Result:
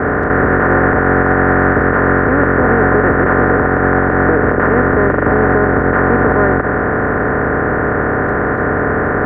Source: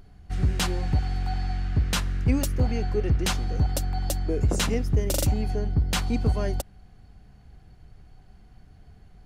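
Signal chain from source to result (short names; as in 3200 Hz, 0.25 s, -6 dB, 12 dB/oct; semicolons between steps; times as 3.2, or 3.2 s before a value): per-bin compression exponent 0.2; Chebyshev low-pass 1800 Hz, order 6; tilt +4.5 dB/oct; gate with hold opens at -23 dBFS; maximiser +17.5 dB; gain -1 dB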